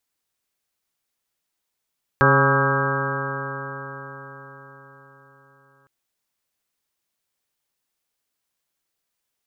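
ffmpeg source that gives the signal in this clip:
-f lavfi -i "aevalsrc='0.126*pow(10,-3*t/4.85)*sin(2*PI*135.09*t)+0.0596*pow(10,-3*t/4.85)*sin(2*PI*270.75*t)+0.0841*pow(10,-3*t/4.85)*sin(2*PI*407.54*t)+0.0891*pow(10,-3*t/4.85)*sin(2*PI*546.01*t)+0.0158*pow(10,-3*t/4.85)*sin(2*PI*686.71*t)+0.0562*pow(10,-3*t/4.85)*sin(2*PI*830.16*t)+0.0631*pow(10,-3*t/4.85)*sin(2*PI*976.88*t)+0.1*pow(10,-3*t/4.85)*sin(2*PI*1127.35*t)+0.106*pow(10,-3*t/4.85)*sin(2*PI*1282.04*t)+0.0501*pow(10,-3*t/4.85)*sin(2*PI*1441.41*t)+0.126*pow(10,-3*t/4.85)*sin(2*PI*1605.86*t)':d=3.66:s=44100"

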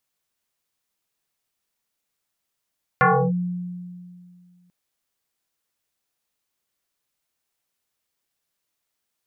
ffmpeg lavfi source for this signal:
-f lavfi -i "aevalsrc='0.266*pow(10,-3*t/2.27)*sin(2*PI*178*t+5.3*clip(1-t/0.31,0,1)*sin(2*PI*1.77*178*t))':d=1.69:s=44100"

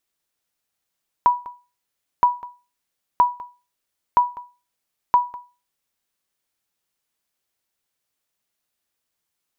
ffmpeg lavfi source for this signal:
-f lavfi -i "aevalsrc='0.447*(sin(2*PI*977*mod(t,0.97))*exp(-6.91*mod(t,0.97)/0.31)+0.106*sin(2*PI*977*max(mod(t,0.97)-0.2,0))*exp(-6.91*max(mod(t,0.97)-0.2,0)/0.31))':d=4.85:s=44100"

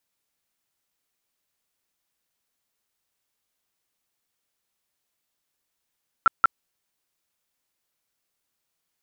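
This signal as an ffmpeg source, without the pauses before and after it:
-f lavfi -i "aevalsrc='0.282*sin(2*PI*1350*mod(t,0.18))*lt(mod(t,0.18),23/1350)':d=0.36:s=44100"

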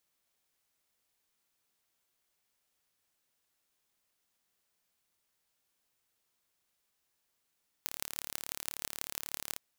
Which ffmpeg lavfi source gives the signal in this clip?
-f lavfi -i "aevalsrc='0.473*eq(mod(n,1212),0)*(0.5+0.5*eq(mod(n,7272),0))':d=1.71:s=44100"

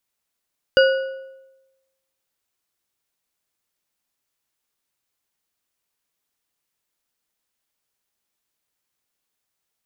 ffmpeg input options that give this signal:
-f lavfi -i "aevalsrc='0.335*pow(10,-3*t/1.05)*sin(2*PI*533*t)+0.188*pow(10,-3*t/0.775)*sin(2*PI*1469.5*t)+0.106*pow(10,-3*t/0.633)*sin(2*PI*2880.3*t)+0.0596*pow(10,-3*t/0.544)*sin(2*PI*4761.3*t)':d=1.55:s=44100"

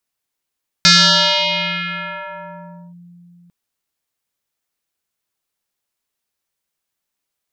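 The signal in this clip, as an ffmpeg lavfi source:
-f lavfi -i "aevalsrc='0.531*pow(10,-3*t/3.95)*sin(2*PI*174*t+7.3*clip(1-t/2.09,0,1)*sin(2*PI*4.41*174*t))':d=2.65:s=44100"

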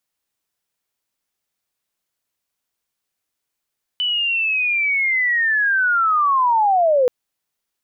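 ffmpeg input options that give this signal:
-f lavfi -i "aevalsrc='pow(10,(-17.5+5.5*t/3.08)/20)*sin(2*PI*(3000*t-2520*t*t/(2*3.08)))':d=3.08:s=44100"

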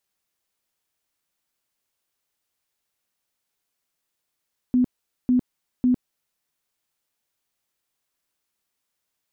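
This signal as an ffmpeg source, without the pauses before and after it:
-f lavfi -i "aevalsrc='0.178*sin(2*PI*250*mod(t,0.55))*lt(mod(t,0.55),26/250)':d=1.65:s=44100"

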